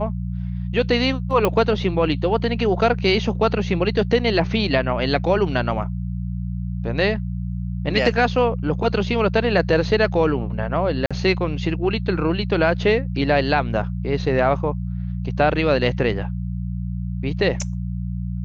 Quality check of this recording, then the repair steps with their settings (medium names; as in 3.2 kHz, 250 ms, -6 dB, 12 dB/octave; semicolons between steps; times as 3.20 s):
hum 60 Hz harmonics 3 -26 dBFS
1.45 s: pop -6 dBFS
11.06–11.11 s: dropout 46 ms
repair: de-click; de-hum 60 Hz, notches 3; interpolate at 11.06 s, 46 ms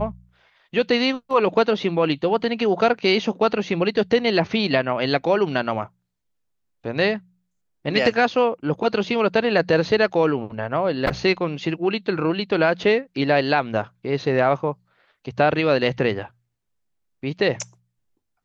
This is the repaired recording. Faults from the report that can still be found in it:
nothing left